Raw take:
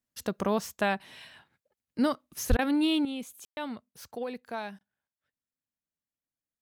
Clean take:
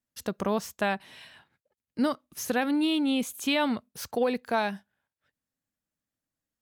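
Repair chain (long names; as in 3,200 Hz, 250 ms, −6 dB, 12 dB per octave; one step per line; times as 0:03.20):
0:02.49–0:02.61: high-pass filter 140 Hz 24 dB per octave
ambience match 0:03.45–0:03.57
repair the gap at 0:02.57/0:04.79, 16 ms
0:03.05: level correction +9.5 dB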